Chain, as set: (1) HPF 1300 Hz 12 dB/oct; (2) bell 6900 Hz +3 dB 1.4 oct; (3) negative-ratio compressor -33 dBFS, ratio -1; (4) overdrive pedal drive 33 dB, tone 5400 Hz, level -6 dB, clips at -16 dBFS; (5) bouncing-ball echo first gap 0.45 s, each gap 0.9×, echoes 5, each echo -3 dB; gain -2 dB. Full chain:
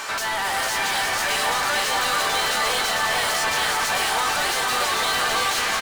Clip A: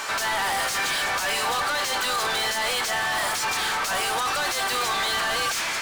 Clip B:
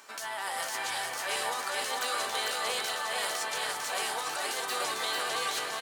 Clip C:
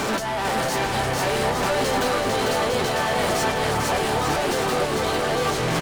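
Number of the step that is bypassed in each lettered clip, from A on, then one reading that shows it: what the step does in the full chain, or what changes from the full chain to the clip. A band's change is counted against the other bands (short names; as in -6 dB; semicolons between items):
5, echo-to-direct 0.0 dB to none; 4, 125 Hz band -7.5 dB; 1, 125 Hz band +16.5 dB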